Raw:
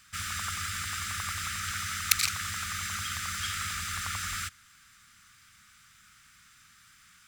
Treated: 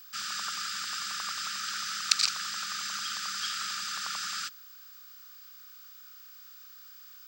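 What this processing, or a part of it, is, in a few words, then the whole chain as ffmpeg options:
old television with a line whistle: -af "highpass=f=220:w=0.5412,highpass=f=220:w=1.3066,equalizer=f=250:t=q:w=4:g=-7,equalizer=f=2.1k:t=q:w=4:g=-9,equalizer=f=4.8k:t=q:w=4:g=8,lowpass=f=7.6k:w=0.5412,lowpass=f=7.6k:w=1.3066,aeval=exprs='val(0)+0.00398*sin(2*PI*15734*n/s)':c=same"

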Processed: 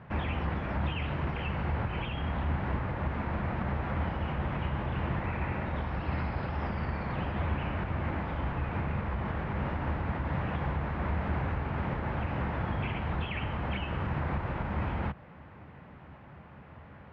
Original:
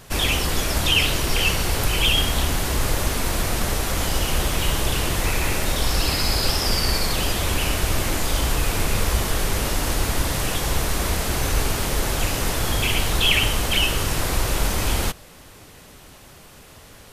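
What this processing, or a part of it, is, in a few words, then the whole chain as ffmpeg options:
bass amplifier: -af "acompressor=threshold=-22dB:ratio=6,highpass=71,equalizer=f=76:t=q:w=4:g=10,equalizer=f=140:t=q:w=4:g=7,equalizer=f=200:t=q:w=4:g=6,equalizer=f=420:t=q:w=4:g=-4,equalizer=f=890:t=q:w=4:g=4,lowpass=f=2.1k:w=0.5412,lowpass=f=2.1k:w=1.3066,volume=-4.5dB"

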